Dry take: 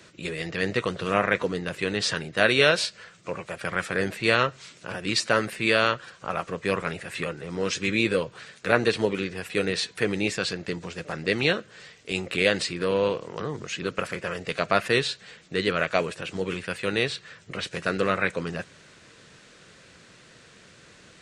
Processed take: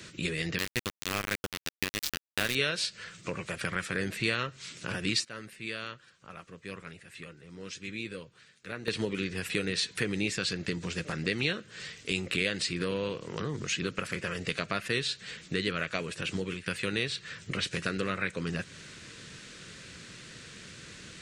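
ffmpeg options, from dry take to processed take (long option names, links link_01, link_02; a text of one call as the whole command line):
ffmpeg -i in.wav -filter_complex "[0:a]asettb=1/sr,asplit=3[link_01][link_02][link_03];[link_01]atrim=end=0.584[link_04];[link_02]atrim=start=0.58:end=2.55,asetpts=PTS-STARTPTS,afade=type=in:duration=0.004:curve=qsin,afade=type=out:start_time=1.966:duration=0.004:curve=qsin,aeval=exprs='val(0)*gte(abs(val(0)),0.112)':channel_layout=same[link_05];[link_03]atrim=start=2.546[link_06];[link_04][link_05]acrossfade=duration=0.004:curve1=hsin:curve2=qsin[link_07];[link_07][link_06]acrossfade=duration=0.004:curve1=qsin:curve2=hsin,asplit=4[link_08][link_09][link_10][link_11];[link_08]atrim=end=5.25,asetpts=PTS-STARTPTS,afade=type=out:start_time=5.03:duration=0.22:curve=log:silence=0.11885[link_12];[link_09]atrim=start=5.25:end=8.88,asetpts=PTS-STARTPTS,volume=-18.5dB[link_13];[link_10]atrim=start=8.88:end=16.66,asetpts=PTS-STARTPTS,afade=type=in:duration=0.22:curve=log:silence=0.11885,afade=type=out:start_time=7.38:duration=0.4:curve=qsin:silence=0.11885[link_14];[link_11]atrim=start=16.66,asetpts=PTS-STARTPTS,afade=type=in:duration=0.004:curve=hsin:silence=0.11885[link_15];[link_12][link_13][link_14][link_15]concat=n=4:v=0:a=1,acompressor=threshold=-35dB:ratio=2.5,equalizer=frequency=730:width_type=o:width=1.6:gain=-10,volume=6.5dB" out.wav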